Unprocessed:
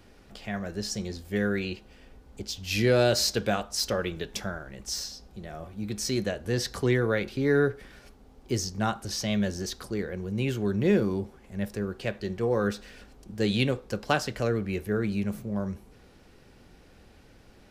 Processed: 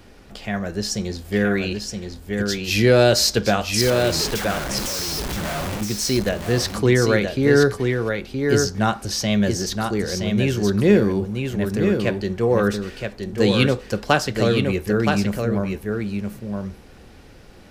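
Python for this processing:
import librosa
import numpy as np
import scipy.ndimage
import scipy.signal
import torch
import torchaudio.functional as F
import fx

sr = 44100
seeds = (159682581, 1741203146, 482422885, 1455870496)

y = fx.clip_1bit(x, sr, at=(3.81, 5.81))
y = y + 10.0 ** (-5.0 / 20.0) * np.pad(y, (int(971 * sr / 1000.0), 0))[:len(y)]
y = y * 10.0 ** (7.5 / 20.0)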